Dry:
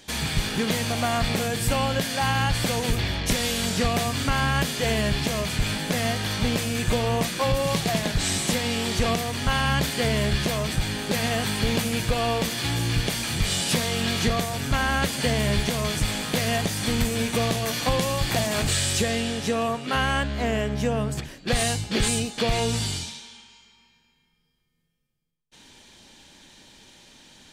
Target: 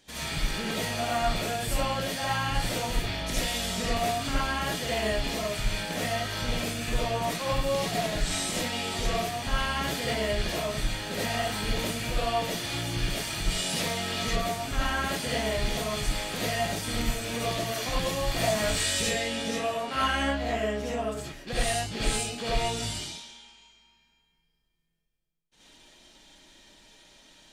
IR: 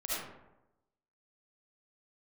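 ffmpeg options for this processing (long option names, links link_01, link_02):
-filter_complex "[0:a]asettb=1/sr,asplit=3[link_01][link_02][link_03];[link_01]atrim=end=18.334[link_04];[link_02]atrim=start=18.33:end=20.45,asetpts=PTS-STARTPTS,afade=type=in:duration=0.004:curve=qsin,afade=type=out:start_time=2.116:duration=0.004:curve=qsin,asplit=2[link_05][link_06];[link_06]adelay=18,volume=-2.5dB[link_07];[link_05][link_07]amix=inputs=2:normalize=0,atrim=end_sample=93492[link_08];[link_03]atrim=start=20.446[link_09];[link_04][link_08]acrossfade=duration=0.004:curve1=hsin:curve2=qsin[link_10];[link_10][link_09]acrossfade=duration=0.004:curve1=qsin:curve2=hsin[link_11];[1:a]atrim=start_sample=2205,afade=type=out:start_time=0.18:duration=0.01,atrim=end_sample=8379[link_12];[link_11][link_12]afir=irnorm=-1:irlink=0,volume=-7dB"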